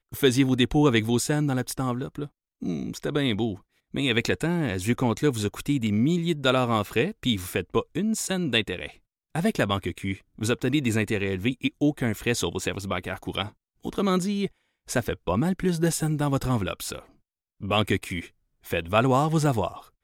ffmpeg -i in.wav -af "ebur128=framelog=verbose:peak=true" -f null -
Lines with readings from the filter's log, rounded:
Integrated loudness:
  I:         -25.9 LUFS
  Threshold: -36.2 LUFS
Loudness range:
  LRA:         3.0 LU
  Threshold: -46.7 LUFS
  LRA low:   -28.0 LUFS
  LRA high:  -25.0 LUFS
True peak:
  Peak:       -7.5 dBFS